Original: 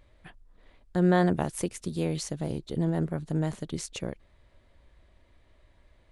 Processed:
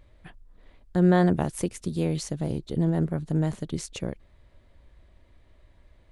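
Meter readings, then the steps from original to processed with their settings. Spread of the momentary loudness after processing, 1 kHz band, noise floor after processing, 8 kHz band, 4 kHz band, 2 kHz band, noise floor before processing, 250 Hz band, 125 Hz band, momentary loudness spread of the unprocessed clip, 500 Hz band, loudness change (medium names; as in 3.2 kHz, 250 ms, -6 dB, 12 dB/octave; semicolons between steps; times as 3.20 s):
13 LU, +1.0 dB, -58 dBFS, 0.0 dB, 0.0 dB, 0.0 dB, -62 dBFS, +3.0 dB, +3.5 dB, 12 LU, +2.0 dB, +3.0 dB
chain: bass shelf 360 Hz +4.5 dB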